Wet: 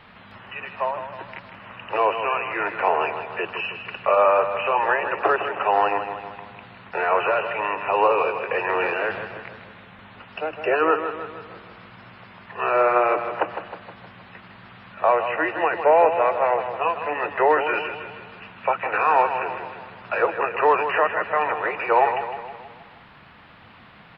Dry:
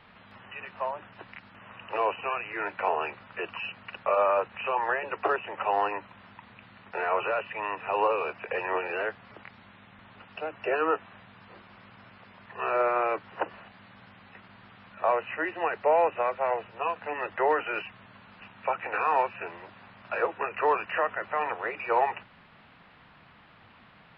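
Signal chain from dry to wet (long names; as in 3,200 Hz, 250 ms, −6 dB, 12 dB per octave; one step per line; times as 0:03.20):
0:08.69–0:09.25: transient designer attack −10 dB, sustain +7 dB
on a send: repeating echo 157 ms, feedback 53%, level −9 dB
on the sum: level +6.5 dB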